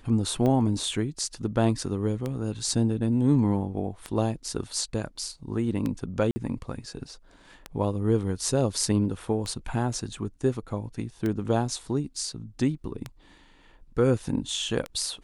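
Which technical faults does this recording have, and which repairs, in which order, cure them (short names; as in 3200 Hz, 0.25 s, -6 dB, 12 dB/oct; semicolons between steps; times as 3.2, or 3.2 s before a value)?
tick 33 1/3 rpm -17 dBFS
6.31–6.36 gap 50 ms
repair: de-click; interpolate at 6.31, 50 ms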